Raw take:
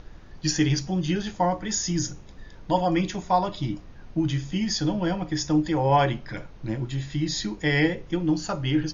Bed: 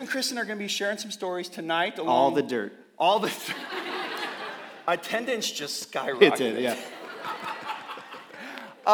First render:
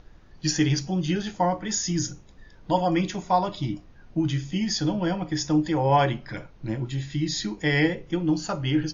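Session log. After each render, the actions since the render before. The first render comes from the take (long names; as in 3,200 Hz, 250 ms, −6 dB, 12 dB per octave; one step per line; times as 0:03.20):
noise reduction from a noise print 6 dB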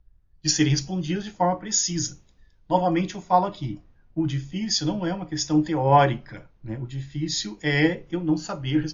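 multiband upward and downward expander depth 70%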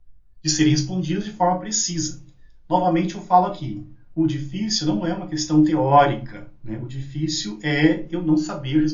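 rectangular room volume 120 cubic metres, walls furnished, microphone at 0.89 metres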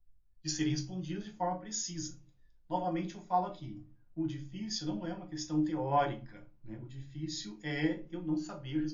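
level −15 dB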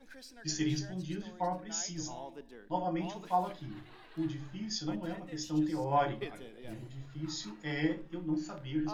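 mix in bed −24 dB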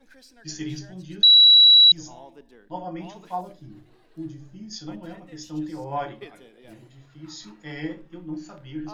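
0:01.23–0:01.92: beep over 3,910 Hz −9 dBFS
0:03.41–0:04.73: flat-topped bell 1,800 Hz −9.5 dB 2.6 octaves
0:06.06–0:07.42: low-shelf EQ 120 Hz −10.5 dB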